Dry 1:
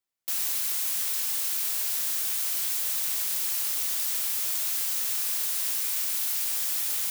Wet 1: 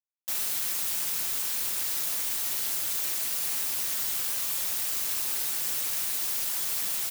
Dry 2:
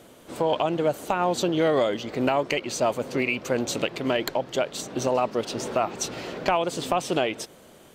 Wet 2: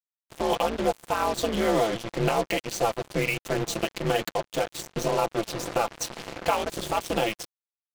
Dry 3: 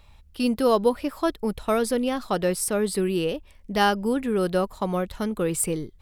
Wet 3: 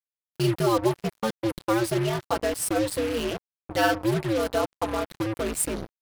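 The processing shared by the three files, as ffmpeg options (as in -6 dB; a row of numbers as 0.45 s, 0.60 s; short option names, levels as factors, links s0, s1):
-af "aeval=exprs='val(0)*sin(2*PI*110*n/s)':c=same,aecho=1:1:5.9:0.61,acrusher=bits=4:mix=0:aa=0.5"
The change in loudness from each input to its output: -1.5 LU, -1.5 LU, -1.5 LU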